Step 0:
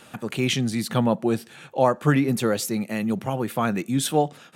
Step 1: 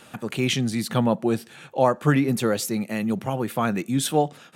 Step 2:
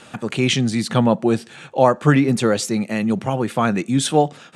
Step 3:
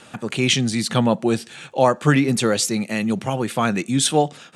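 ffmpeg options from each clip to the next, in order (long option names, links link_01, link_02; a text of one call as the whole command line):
ffmpeg -i in.wav -af anull out.wav
ffmpeg -i in.wav -af "lowpass=frequency=9200:width=0.5412,lowpass=frequency=9200:width=1.3066,volume=5dB" out.wav
ffmpeg -i in.wav -filter_complex "[0:a]highshelf=frequency=9700:gain=3.5,acrossover=split=2100[link_01][link_02];[link_02]dynaudnorm=framelen=210:gausssize=3:maxgain=5.5dB[link_03];[link_01][link_03]amix=inputs=2:normalize=0,volume=-2dB" out.wav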